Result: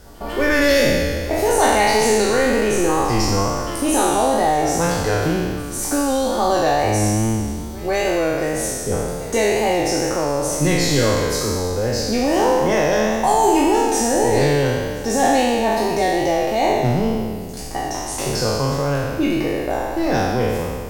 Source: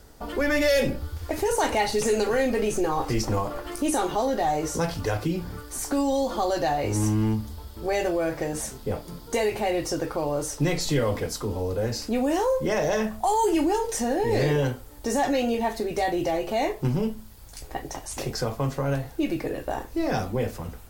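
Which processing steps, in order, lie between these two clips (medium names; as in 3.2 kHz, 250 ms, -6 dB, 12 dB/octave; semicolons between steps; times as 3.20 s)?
spectral sustain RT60 1.94 s; wow and flutter 40 cents; pre-echo 152 ms -19.5 dB; trim +3.5 dB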